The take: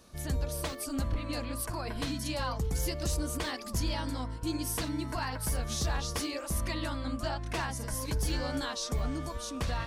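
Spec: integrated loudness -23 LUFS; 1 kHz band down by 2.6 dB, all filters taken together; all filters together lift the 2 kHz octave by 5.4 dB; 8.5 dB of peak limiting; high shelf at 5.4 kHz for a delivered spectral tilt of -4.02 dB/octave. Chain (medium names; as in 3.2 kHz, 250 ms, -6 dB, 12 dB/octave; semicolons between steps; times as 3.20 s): peaking EQ 1 kHz -5.5 dB; peaking EQ 2 kHz +8 dB; treble shelf 5.4 kHz +4 dB; trim +14 dB; peak limiter -14.5 dBFS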